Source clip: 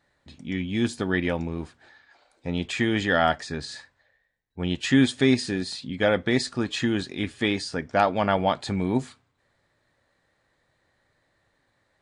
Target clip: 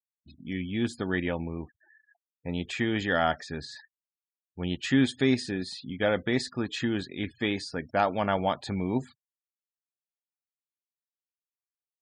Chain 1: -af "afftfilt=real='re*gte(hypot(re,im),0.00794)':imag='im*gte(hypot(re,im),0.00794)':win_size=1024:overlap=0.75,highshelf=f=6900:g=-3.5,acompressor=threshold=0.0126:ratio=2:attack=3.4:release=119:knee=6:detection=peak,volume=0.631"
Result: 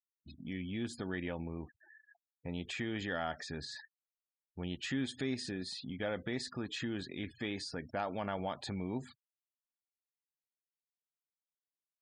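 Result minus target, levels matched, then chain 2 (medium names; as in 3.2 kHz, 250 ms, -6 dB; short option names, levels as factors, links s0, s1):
compression: peak gain reduction +13.5 dB
-af "afftfilt=real='re*gte(hypot(re,im),0.00794)':imag='im*gte(hypot(re,im),0.00794)':win_size=1024:overlap=0.75,highshelf=f=6900:g=-3.5,volume=0.631"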